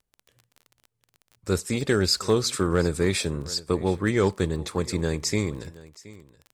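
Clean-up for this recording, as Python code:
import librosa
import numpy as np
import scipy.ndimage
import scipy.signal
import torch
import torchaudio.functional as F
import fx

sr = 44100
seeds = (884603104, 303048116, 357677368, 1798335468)

y = fx.fix_declip(x, sr, threshold_db=-11.0)
y = fx.fix_declick_ar(y, sr, threshold=6.5)
y = fx.fix_echo_inverse(y, sr, delay_ms=723, level_db=-20.0)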